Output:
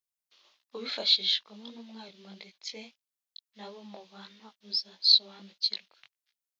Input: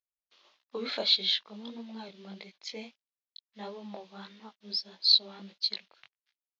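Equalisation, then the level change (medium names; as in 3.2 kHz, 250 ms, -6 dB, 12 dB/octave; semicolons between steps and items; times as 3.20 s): treble shelf 3.3 kHz +9 dB; -4.0 dB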